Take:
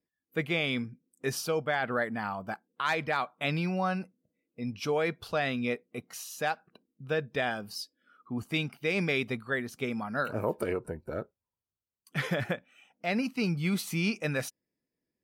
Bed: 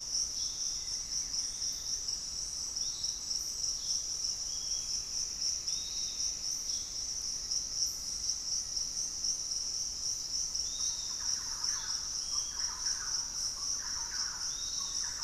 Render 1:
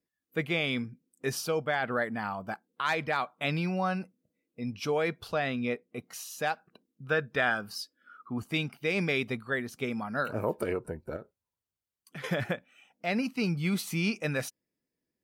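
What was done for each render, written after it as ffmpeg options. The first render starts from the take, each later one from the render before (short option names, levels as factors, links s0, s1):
-filter_complex "[0:a]asettb=1/sr,asplit=3[s0][s1][s2];[s0]atrim=end=5.344[s3];[s1]atrim=start=5.34:end=5.99,asetpts=PTS-STARTPTS,afade=t=in:d=0.004:c=qsin,afade=t=out:st=0.646:d=0.004:c=qsin,highshelf=f=4100:g=-6.5[s4];[s2]atrim=start=5.986[s5];[s3][s4]acrossfade=d=0.004:c1=hsin:c2=qsin[s6];[s6][s5]acrossfade=d=0.004:c1=qsin:c2=hsin,asettb=1/sr,asplit=3[s7][s8][s9];[s7]atrim=end=7.074[s10];[s8]atrim=start=7.07:end=8.4,asetpts=PTS-STARTPTS,afade=t=in:d=0.004:c=qsin,afade=t=out:st=1.326:d=0.004:c=qsin,equalizer=f=1400:w=2:g=10[s11];[s9]atrim=start=8.396[s12];[s10][s11]acrossfade=d=0.004:c1=hsin:c2=qsin[s13];[s13][s12]acrossfade=d=0.004:c1=qsin:c2=hsin,asettb=1/sr,asplit=3[s14][s15][s16];[s14]atrim=end=11.164[s17];[s15]atrim=start=11.16:end=12.24,asetpts=PTS-STARTPTS,afade=t=in:d=0.004:c=qsin,afade=t=out:st=1.076:d=0.004:c=qsin,acompressor=threshold=0.01:ratio=4:attack=3.2:release=140:knee=1:detection=peak[s18];[s16]atrim=start=12.236[s19];[s17][s18]acrossfade=d=0.004:c1=hsin:c2=qsin[s20];[s20][s19]acrossfade=d=0.004:c1=qsin:c2=hsin"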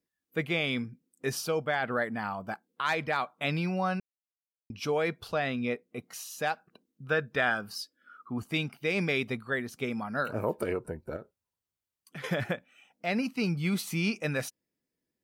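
-filter_complex "[0:a]asplit=3[s0][s1][s2];[s0]atrim=end=4,asetpts=PTS-STARTPTS,afade=t=out:st=3.996:d=0.004:c=hsin[s3];[s1]atrim=start=4:end=4.7,asetpts=PTS-STARTPTS,volume=0[s4];[s2]atrim=start=4.7,asetpts=PTS-STARTPTS,afade=t=in:d=0.004:c=hsin[s5];[s3][s4][s5]concat=n=3:v=0:a=1"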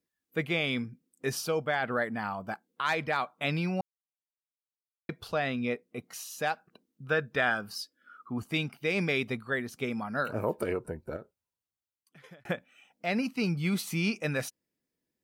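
-filter_complex "[0:a]asplit=4[s0][s1][s2][s3];[s0]atrim=end=3.81,asetpts=PTS-STARTPTS,afade=t=out:st=3.806:d=0.004:c=hsin[s4];[s1]atrim=start=3.81:end=5.09,asetpts=PTS-STARTPTS,volume=0[s5];[s2]atrim=start=5.09:end=12.45,asetpts=PTS-STARTPTS,afade=t=in:d=0.004:c=hsin,afade=t=out:st=6.01:d=1.35[s6];[s3]atrim=start=12.45,asetpts=PTS-STARTPTS,afade=t=in:d=0.004:c=hsin[s7];[s4][s5][s6][s7]concat=n=4:v=0:a=1"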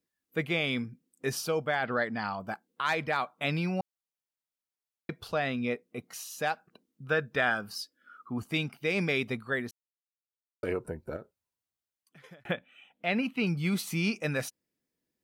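-filter_complex "[0:a]asettb=1/sr,asplit=3[s0][s1][s2];[s0]atrim=end=1.854[s3];[s1]atrim=start=1.85:end=2.4,asetpts=PTS-STARTPTS,afade=t=in:d=0.004:c=qsin,afade=t=out:st=0.546:d=0.004:c=qsin,lowpass=f=4900:t=q:w=3.1[s4];[s2]atrim=start=2.396[s5];[s3][s4]acrossfade=d=0.004:c1=hsin:c2=qsin[s6];[s6][s5]acrossfade=d=0.004:c1=qsin:c2=hsin,asettb=1/sr,asplit=3[s7][s8][s9];[s7]atrim=end=12.454[s10];[s8]atrim=start=12.45:end=13.47,asetpts=PTS-STARTPTS,afade=t=in:d=0.004:c=qsin,afade=t=out:st=1.016:d=0.004:c=qsin,highshelf=f=4100:t=q:w=3:g=-6.5[s11];[s9]atrim=start=13.466[s12];[s10][s11]acrossfade=d=0.004:c1=hsin:c2=qsin[s13];[s13][s12]acrossfade=d=0.004:c1=qsin:c2=hsin,asplit=3[s14][s15][s16];[s14]atrim=end=9.71,asetpts=PTS-STARTPTS,afade=t=out:st=9.706:d=0.004:c=hsin[s17];[s15]atrim=start=9.71:end=10.63,asetpts=PTS-STARTPTS,volume=0[s18];[s16]atrim=start=10.63,asetpts=PTS-STARTPTS,afade=t=in:d=0.004:c=hsin[s19];[s17][s18][s19]concat=n=3:v=0:a=1"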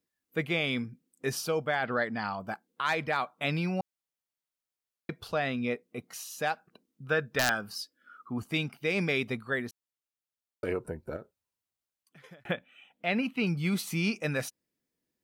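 -af "aeval=exprs='(mod(5.96*val(0)+1,2)-1)/5.96':c=same"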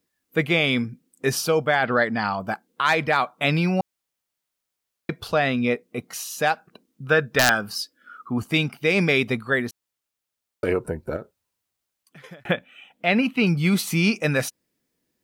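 -af "volume=2.82"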